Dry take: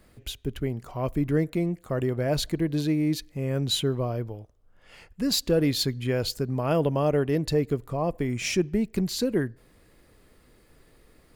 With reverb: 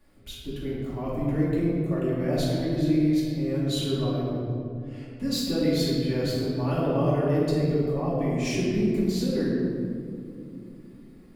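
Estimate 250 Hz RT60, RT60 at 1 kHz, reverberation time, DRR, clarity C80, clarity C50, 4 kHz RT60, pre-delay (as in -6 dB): 3.9 s, 2.2 s, 2.6 s, -9.0 dB, 0.5 dB, -2.0 dB, 1.2 s, 3 ms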